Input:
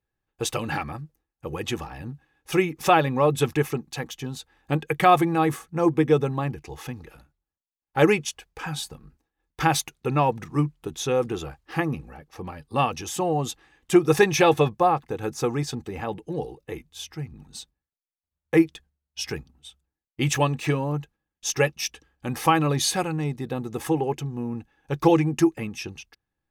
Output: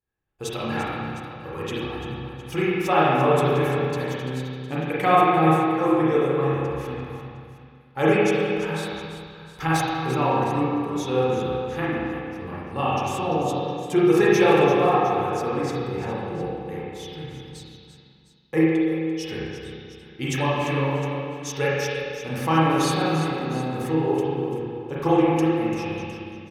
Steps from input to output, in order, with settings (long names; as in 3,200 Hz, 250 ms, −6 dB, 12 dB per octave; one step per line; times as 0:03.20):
multi-tap delay 342/709 ms −11.5/−16 dB
spring reverb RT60 1.9 s, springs 31/44 ms, chirp 40 ms, DRR −8 dB
level −7 dB